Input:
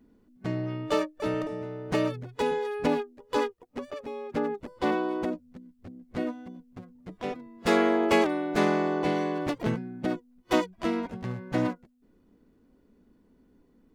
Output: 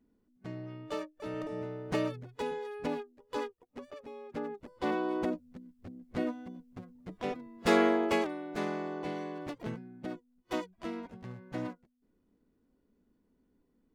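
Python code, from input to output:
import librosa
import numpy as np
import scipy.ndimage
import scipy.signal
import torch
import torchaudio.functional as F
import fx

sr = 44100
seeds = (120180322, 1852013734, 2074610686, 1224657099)

y = fx.gain(x, sr, db=fx.line((1.26, -11.0), (1.59, -2.0), (2.54, -9.0), (4.59, -9.0), (5.17, -2.0), (7.85, -2.0), (8.36, -10.5)))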